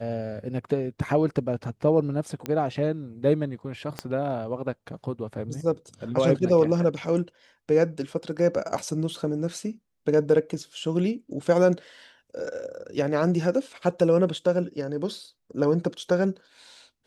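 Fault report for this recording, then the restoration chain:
2.46 pop -15 dBFS
3.99 pop -15 dBFS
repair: de-click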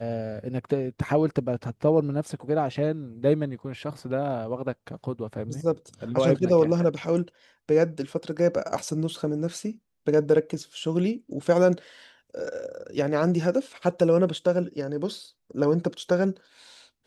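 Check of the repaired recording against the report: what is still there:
3.99 pop

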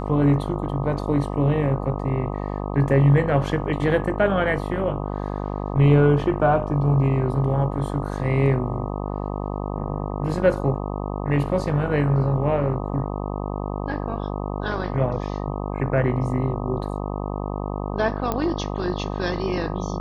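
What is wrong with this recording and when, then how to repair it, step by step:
buzz 50 Hz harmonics 25 -28 dBFS
18.32 pop -11 dBFS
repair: de-click; de-hum 50 Hz, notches 25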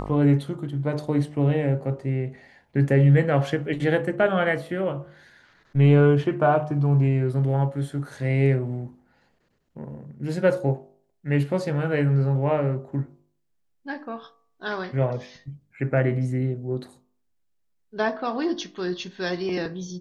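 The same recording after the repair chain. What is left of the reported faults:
none

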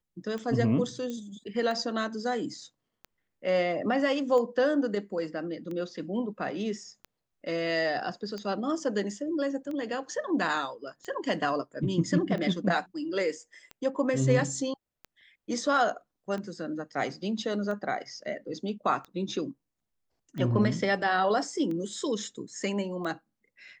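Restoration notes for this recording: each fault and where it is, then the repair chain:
tick 45 rpm -26 dBFS
1.1 pop -24 dBFS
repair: de-click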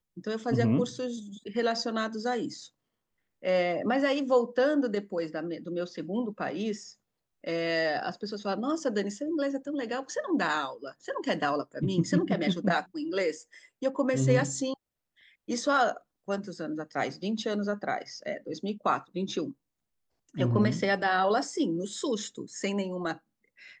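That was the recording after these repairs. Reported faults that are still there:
none

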